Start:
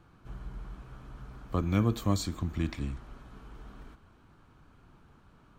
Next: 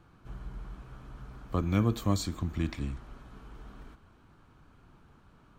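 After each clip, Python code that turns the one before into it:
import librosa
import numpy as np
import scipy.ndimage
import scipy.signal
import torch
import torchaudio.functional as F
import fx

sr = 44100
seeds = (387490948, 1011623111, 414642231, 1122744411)

y = x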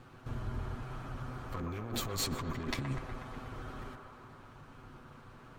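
y = fx.lower_of_two(x, sr, delay_ms=7.9)
y = fx.over_compress(y, sr, threshold_db=-38.0, ratio=-1.0)
y = fx.echo_wet_bandpass(y, sr, ms=122, feedback_pct=72, hz=860.0, wet_db=-4.0)
y = y * librosa.db_to_amplitude(2.0)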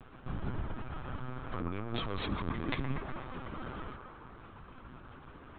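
y = fx.lpc_vocoder(x, sr, seeds[0], excitation='pitch_kept', order=16)
y = y * librosa.db_to_amplitude(2.0)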